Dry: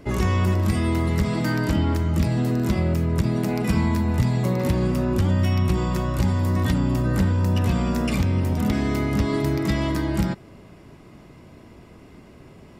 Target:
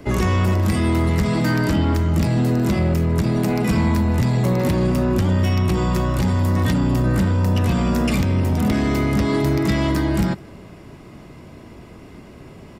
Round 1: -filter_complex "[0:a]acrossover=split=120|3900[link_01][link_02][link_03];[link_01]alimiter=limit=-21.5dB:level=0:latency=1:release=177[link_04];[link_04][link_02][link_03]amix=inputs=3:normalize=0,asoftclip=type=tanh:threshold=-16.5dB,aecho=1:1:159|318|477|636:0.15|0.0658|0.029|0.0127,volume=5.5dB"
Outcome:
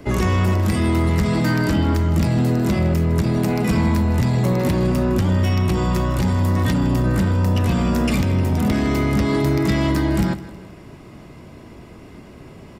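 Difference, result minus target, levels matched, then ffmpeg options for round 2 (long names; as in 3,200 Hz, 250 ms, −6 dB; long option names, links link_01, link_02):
echo-to-direct +7 dB
-filter_complex "[0:a]acrossover=split=120|3900[link_01][link_02][link_03];[link_01]alimiter=limit=-21.5dB:level=0:latency=1:release=177[link_04];[link_04][link_02][link_03]amix=inputs=3:normalize=0,asoftclip=type=tanh:threshold=-16.5dB,aecho=1:1:159|318:0.0422|0.0186,volume=5.5dB"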